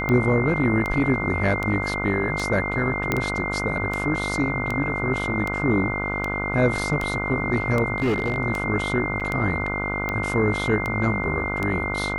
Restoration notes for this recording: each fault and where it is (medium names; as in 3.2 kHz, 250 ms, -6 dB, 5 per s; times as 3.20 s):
buzz 50 Hz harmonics 30 -29 dBFS
tick 78 rpm -13 dBFS
whine 2.1 kHz -27 dBFS
3.12 s: pop -8 dBFS
7.96–8.38 s: clipped -18 dBFS
9.20–9.21 s: dropout 6.9 ms